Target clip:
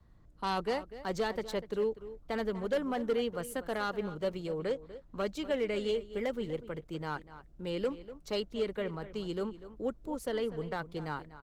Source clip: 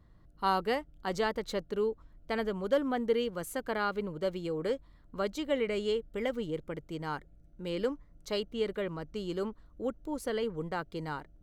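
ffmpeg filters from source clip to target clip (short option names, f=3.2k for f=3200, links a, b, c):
-filter_complex "[0:a]asplit=3[a][b][c];[a]afade=t=out:st=4.58:d=0.02[d];[b]lowpass=8.2k,afade=t=in:st=4.58:d=0.02,afade=t=out:st=5.17:d=0.02[e];[c]afade=t=in:st=5.17:d=0.02[f];[d][e][f]amix=inputs=3:normalize=0,adynamicequalizer=threshold=0.00398:dfrequency=300:dqfactor=2.9:tfrequency=300:tqfactor=2.9:attack=5:release=100:ratio=0.375:range=2.5:mode=cutabove:tftype=bell,asettb=1/sr,asplit=3[g][h][i];[g]atrim=end=2.994[j];[h]atrim=start=2.99:end=3.9,asetpts=PTS-STARTPTS,afade=t=in:d=0.004:c=qsin,afade=t=out:st=0.906:d=0.004:c=qsin,aeval=exprs='val(0)+0.000794*(sin(2*PI*50*n/s)+sin(2*PI*2*50*n/s)/2+sin(2*PI*3*50*n/s)/3+sin(2*PI*4*50*n/s)/4+sin(2*PI*5*50*n/s)/5)':c=same[k];[i]atrim=start=3.896[l];[j][k]acrossfade=d=0.004:c1=hsin:c2=qsin[m];[m][l]acrossfade=d=0.004:c1=qsin:c2=hsin,acrossover=split=260|4100[n][o][p];[o]asoftclip=type=hard:threshold=-26.5dB[q];[n][q][p]amix=inputs=3:normalize=0,asplit=2[r][s];[s]adelay=244.9,volume=-14dB,highshelf=f=4k:g=-5.51[t];[r][t]amix=inputs=2:normalize=0" -ar 48000 -c:a libopus -b:a 16k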